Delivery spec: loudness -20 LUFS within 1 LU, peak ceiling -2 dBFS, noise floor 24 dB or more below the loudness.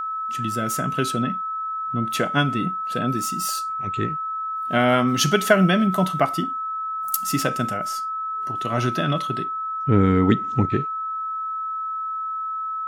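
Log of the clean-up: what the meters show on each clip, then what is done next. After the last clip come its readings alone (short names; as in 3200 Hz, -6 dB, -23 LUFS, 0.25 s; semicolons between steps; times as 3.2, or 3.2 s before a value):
steady tone 1300 Hz; tone level -25 dBFS; loudness -23.0 LUFS; peak -3.0 dBFS; loudness target -20.0 LUFS
-> notch 1300 Hz, Q 30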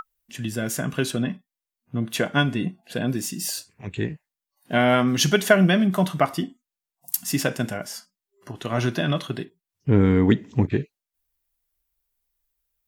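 steady tone none; loudness -23.5 LUFS; peak -3.5 dBFS; loudness target -20.0 LUFS
-> gain +3.5 dB; limiter -2 dBFS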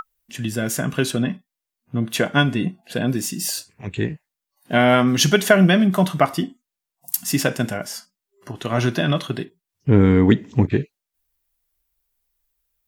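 loudness -20.0 LUFS; peak -2.0 dBFS; noise floor -85 dBFS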